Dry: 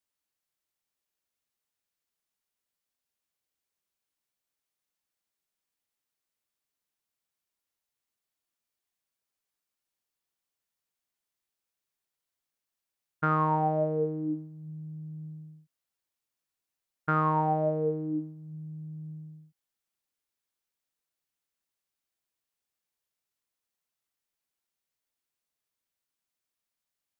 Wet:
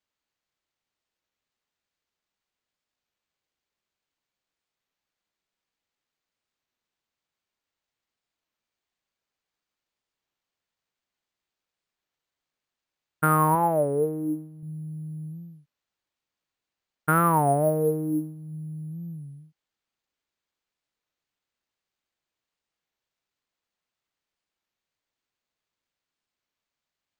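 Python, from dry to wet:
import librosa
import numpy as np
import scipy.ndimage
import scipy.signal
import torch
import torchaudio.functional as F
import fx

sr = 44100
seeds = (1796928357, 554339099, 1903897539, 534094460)

y = np.repeat(scipy.signal.resample_poly(x, 1, 4), 4)[:len(x)]
y = fx.bass_treble(y, sr, bass_db=-5, treble_db=-5, at=(13.55, 14.63))
y = fx.record_warp(y, sr, rpm=33.33, depth_cents=160.0)
y = y * 10.0 ** (5.0 / 20.0)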